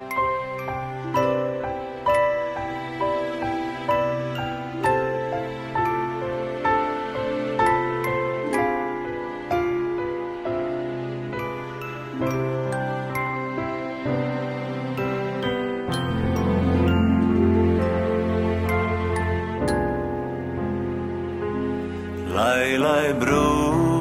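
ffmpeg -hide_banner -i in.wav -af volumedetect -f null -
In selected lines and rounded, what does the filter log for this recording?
mean_volume: -23.7 dB
max_volume: -6.4 dB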